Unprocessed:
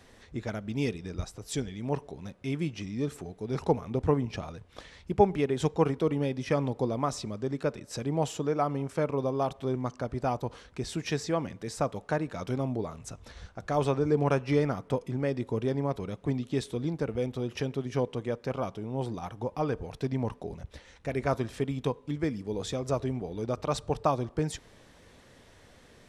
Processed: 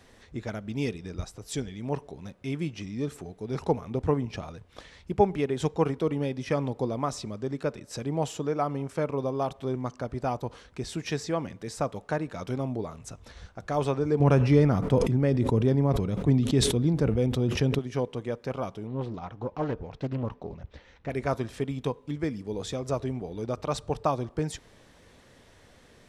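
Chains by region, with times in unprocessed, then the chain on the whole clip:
0:14.20–0:17.79: low-shelf EQ 310 Hz +10 dB + level that may fall only so fast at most 46 dB per second
0:18.87–0:21.10: high-frequency loss of the air 140 metres + highs frequency-modulated by the lows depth 0.61 ms
whole clip: no processing

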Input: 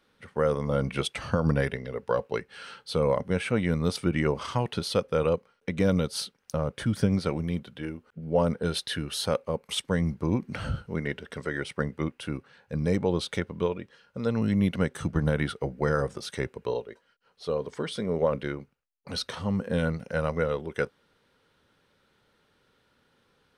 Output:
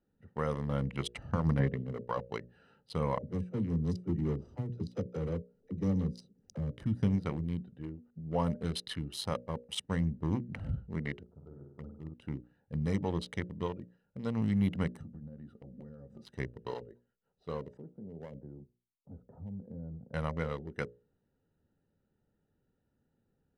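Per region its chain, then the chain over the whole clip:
0:01.59–0:02.04: band-pass filter 150–3,500 Hz + spectral tilt −3.5 dB per octave
0:03.18–0:06.71: drawn EQ curve 420 Hz 0 dB, 990 Hz −14 dB, 3,000 Hz −13 dB, 6,000 Hz −1 dB, 12,000 Hz −14 dB + upward compression, threshold −43 dBFS + all-pass dispersion lows, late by 42 ms, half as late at 390 Hz
0:11.23–0:12.14: Chebyshev low-pass with heavy ripple 1,300 Hz, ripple 3 dB + parametric band 290 Hz −12 dB 2.9 octaves + flutter between parallel walls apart 8.7 metres, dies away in 0.74 s
0:15.01–0:16.22: downward compressor 12 to 1, threshold −39 dBFS + hollow resonant body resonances 230/540/1,200 Hz, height 11 dB, ringing for 90 ms + hard clipping −30.5 dBFS
0:17.77–0:20.14: low-pass filter 1,000 Hz 24 dB per octave + downward compressor 2.5 to 1, threshold −37 dBFS + multiband upward and downward expander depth 40%
whole clip: adaptive Wiener filter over 41 samples; mains-hum notches 60/120/180/240/300/360/420/480/540/600 Hz; comb filter 1 ms, depth 39%; level −5.5 dB

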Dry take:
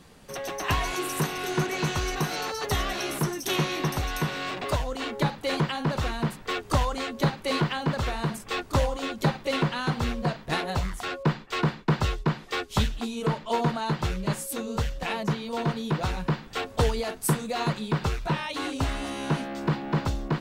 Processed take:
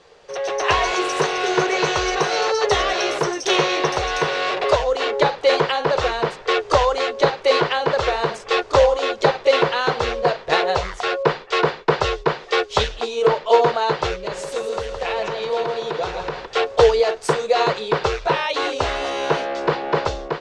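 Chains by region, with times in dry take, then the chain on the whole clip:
0:14.15–0:16.46: downward compressor 3 to 1, threshold −32 dBFS + repeating echo 164 ms, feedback 43%, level −7 dB
whole clip: low-pass filter 6,400 Hz 24 dB per octave; low shelf with overshoot 330 Hz −10.5 dB, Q 3; automatic gain control gain up to 6.5 dB; level +2.5 dB

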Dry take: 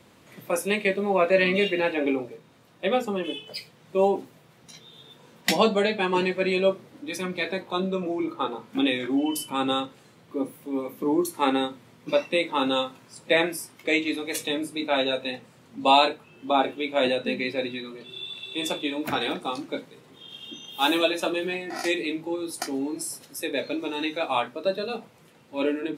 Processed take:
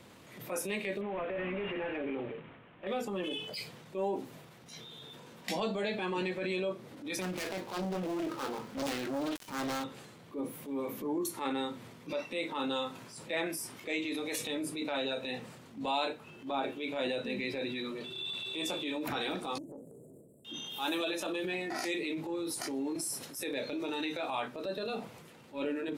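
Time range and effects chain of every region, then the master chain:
0:01.01–0:02.87: variable-slope delta modulation 16 kbit/s + downward compressor 2.5 to 1, threshold −32 dBFS
0:07.21–0:09.84: gap after every zero crossing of 0.15 ms + highs frequency-modulated by the lows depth 0.88 ms
0:19.58–0:20.45: downward compressor 3 to 1, threshold −47 dBFS + linear-phase brick-wall band-stop 680–7,400 Hz + highs frequency-modulated by the lows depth 0.35 ms
whole clip: downward compressor 3 to 1, threshold −33 dBFS; transient designer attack −8 dB, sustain +5 dB

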